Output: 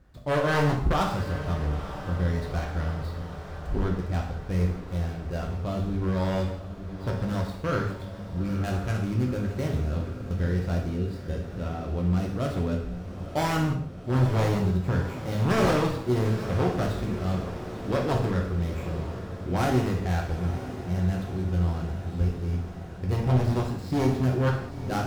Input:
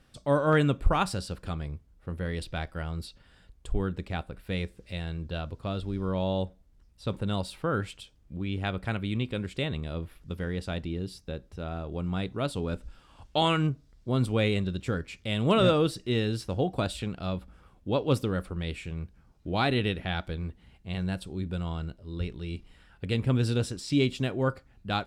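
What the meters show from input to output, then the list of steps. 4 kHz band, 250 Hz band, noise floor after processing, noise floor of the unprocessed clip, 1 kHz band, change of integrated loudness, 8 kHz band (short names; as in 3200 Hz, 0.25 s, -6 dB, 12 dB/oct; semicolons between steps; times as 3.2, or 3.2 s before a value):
-5.0 dB, +2.5 dB, -38 dBFS, -60 dBFS, +2.0 dB, +2.5 dB, +1.5 dB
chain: median filter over 15 samples; bell 91 Hz +4 dB 1.5 oct; wavefolder -19.5 dBFS; diffused feedback echo 0.921 s, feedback 67%, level -11.5 dB; non-linear reverb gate 0.23 s falling, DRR 0 dB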